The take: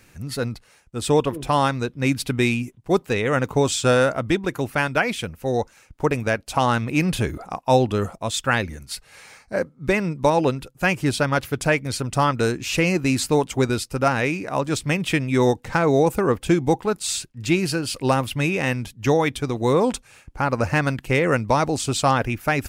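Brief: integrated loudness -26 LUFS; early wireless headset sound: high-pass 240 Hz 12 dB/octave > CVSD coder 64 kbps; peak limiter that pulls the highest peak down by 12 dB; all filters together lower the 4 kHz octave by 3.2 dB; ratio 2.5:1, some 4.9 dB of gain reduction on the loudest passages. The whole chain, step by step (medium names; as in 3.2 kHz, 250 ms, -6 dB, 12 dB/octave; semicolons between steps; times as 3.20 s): peaking EQ 4 kHz -4 dB; compression 2.5:1, threshold -20 dBFS; peak limiter -19.5 dBFS; high-pass 240 Hz 12 dB/octave; CVSD coder 64 kbps; trim +6 dB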